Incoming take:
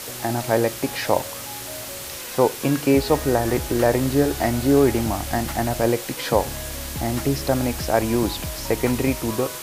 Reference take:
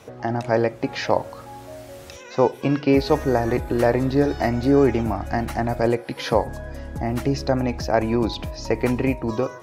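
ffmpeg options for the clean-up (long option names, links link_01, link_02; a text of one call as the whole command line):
ffmpeg -i in.wav -af "adeclick=threshold=4,afwtdn=0.022" out.wav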